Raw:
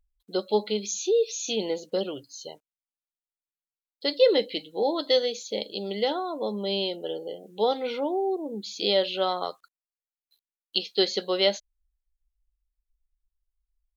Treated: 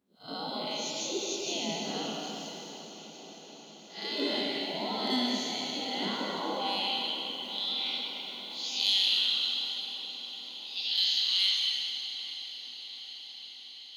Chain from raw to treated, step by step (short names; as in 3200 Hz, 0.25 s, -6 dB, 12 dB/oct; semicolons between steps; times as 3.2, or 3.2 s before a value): time blur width 0.172 s; tilt -1.5 dB/oct; spectral gate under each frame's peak -15 dB weak; in parallel at +2 dB: compressor, threshold -47 dBFS, peak gain reduction 15 dB; on the sum: soft clip -23.5 dBFS, distortion -23 dB; high-pass sweep 210 Hz -> 3300 Hz, 6.39–6.98; on a send: diffused feedback echo 0.81 s, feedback 66%, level -13 dB; on the sum: plate-style reverb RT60 2.1 s, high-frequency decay 1×, pre-delay 0.115 s, DRR 1.5 dB; gain +2.5 dB